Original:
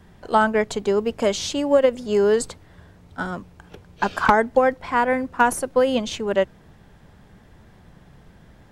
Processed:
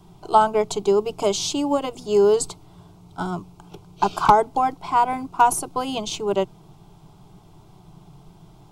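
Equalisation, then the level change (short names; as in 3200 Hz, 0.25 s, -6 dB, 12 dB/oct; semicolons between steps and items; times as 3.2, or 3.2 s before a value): bell 170 Hz +2.5 dB 0.22 oct; fixed phaser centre 350 Hz, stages 8; +4.0 dB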